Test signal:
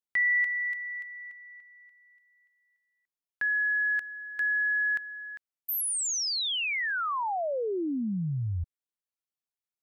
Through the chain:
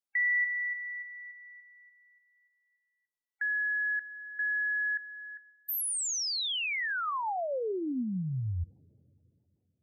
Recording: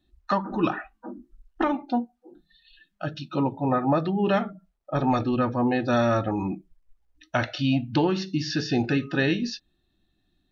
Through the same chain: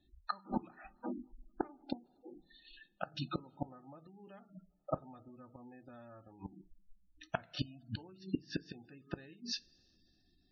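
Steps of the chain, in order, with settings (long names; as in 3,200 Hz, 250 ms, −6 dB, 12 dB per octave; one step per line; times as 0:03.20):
gate with flip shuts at −19 dBFS, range −30 dB
coupled-rooms reverb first 0.22 s, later 3.3 s, from −21 dB, DRR 15.5 dB
gate on every frequency bin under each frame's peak −25 dB strong
level −2.5 dB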